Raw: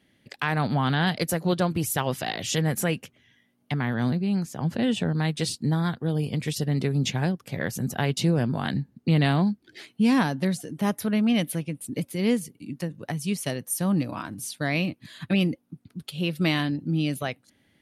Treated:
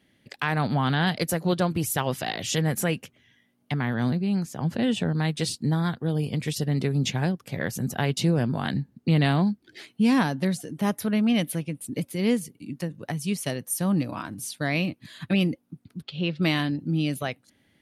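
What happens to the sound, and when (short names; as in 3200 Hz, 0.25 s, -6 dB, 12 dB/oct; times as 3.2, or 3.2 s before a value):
16.02–16.43 LPF 4700 Hz 24 dB/oct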